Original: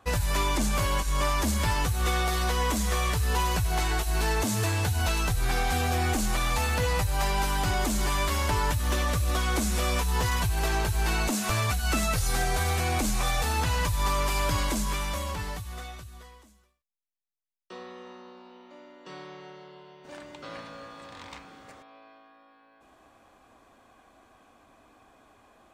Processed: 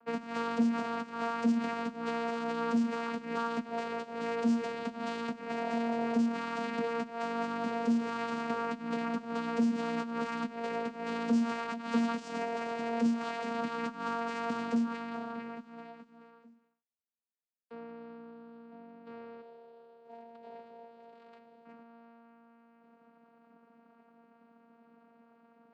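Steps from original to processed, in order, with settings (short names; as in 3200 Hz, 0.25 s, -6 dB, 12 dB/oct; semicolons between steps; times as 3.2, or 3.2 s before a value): Wiener smoothing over 9 samples; 19.41–21.65 fixed phaser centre 550 Hz, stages 4; vocoder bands 8, saw 232 Hz; gain -2 dB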